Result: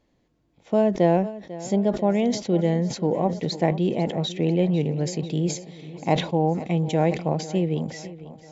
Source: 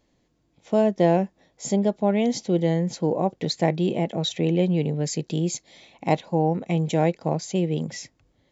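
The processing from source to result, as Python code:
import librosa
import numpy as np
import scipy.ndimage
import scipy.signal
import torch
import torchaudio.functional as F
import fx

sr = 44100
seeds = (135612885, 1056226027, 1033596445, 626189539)

y = fx.high_shelf(x, sr, hz=5100.0, db=-9.5)
y = fx.echo_feedback(y, sr, ms=496, feedback_pct=53, wet_db=-16.5)
y = fx.sustainer(y, sr, db_per_s=120.0)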